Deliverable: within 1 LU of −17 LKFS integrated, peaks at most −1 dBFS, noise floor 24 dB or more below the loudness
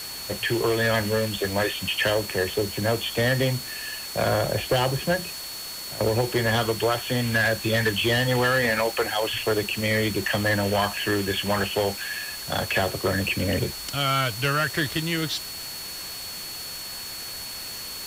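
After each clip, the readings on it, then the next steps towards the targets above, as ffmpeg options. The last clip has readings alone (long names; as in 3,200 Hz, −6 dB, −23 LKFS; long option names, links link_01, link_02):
interfering tone 4,400 Hz; level of the tone −36 dBFS; background noise floor −36 dBFS; target noise floor −49 dBFS; integrated loudness −25.0 LKFS; sample peak −12.5 dBFS; target loudness −17.0 LKFS
→ -af "bandreject=frequency=4400:width=30"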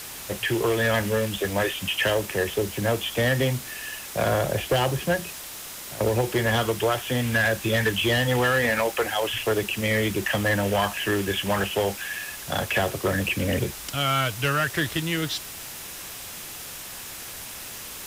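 interfering tone none found; background noise floor −38 dBFS; target noise floor −49 dBFS
→ -af "afftdn=noise_reduction=11:noise_floor=-38"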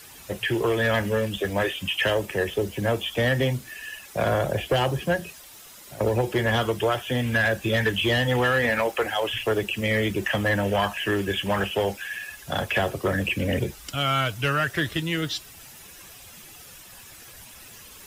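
background noise floor −46 dBFS; target noise floor −49 dBFS
→ -af "afftdn=noise_reduction=6:noise_floor=-46"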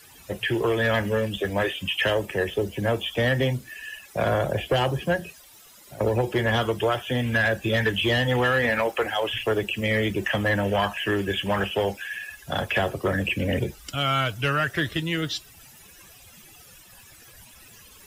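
background noise floor −50 dBFS; integrated loudness −25.0 LKFS; sample peak −14.0 dBFS; target loudness −17.0 LKFS
→ -af "volume=8dB"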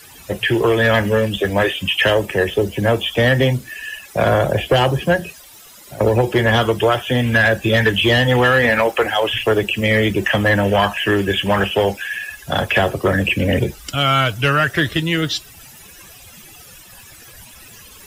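integrated loudness −17.0 LKFS; sample peak −6.0 dBFS; background noise floor −42 dBFS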